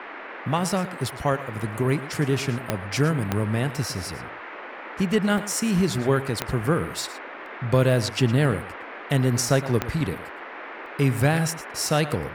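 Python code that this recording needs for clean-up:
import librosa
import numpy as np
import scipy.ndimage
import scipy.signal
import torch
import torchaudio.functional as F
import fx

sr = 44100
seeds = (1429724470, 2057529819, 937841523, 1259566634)

y = fx.fix_declick_ar(x, sr, threshold=10.0)
y = fx.fix_interpolate(y, sr, at_s=(5.38, 7.46, 8.52, 10.86), length_ms=1.4)
y = fx.noise_reduce(y, sr, print_start_s=4.35, print_end_s=4.85, reduce_db=30.0)
y = fx.fix_echo_inverse(y, sr, delay_ms=112, level_db=-15.0)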